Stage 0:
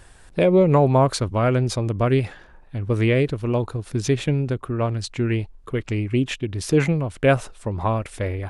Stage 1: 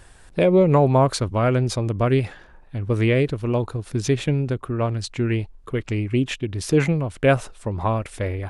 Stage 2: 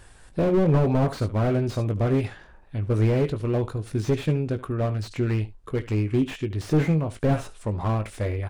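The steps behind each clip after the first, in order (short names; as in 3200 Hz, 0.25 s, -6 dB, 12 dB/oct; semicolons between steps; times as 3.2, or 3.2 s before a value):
nothing audible
doubler 19 ms -9.5 dB; echo 74 ms -18.5 dB; slew limiter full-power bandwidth 60 Hz; gain -2 dB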